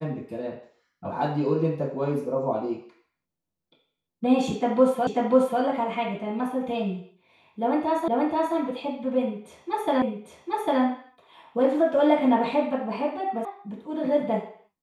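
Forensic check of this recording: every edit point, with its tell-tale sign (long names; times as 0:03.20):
0:05.07: the same again, the last 0.54 s
0:08.08: the same again, the last 0.48 s
0:10.02: the same again, the last 0.8 s
0:13.45: cut off before it has died away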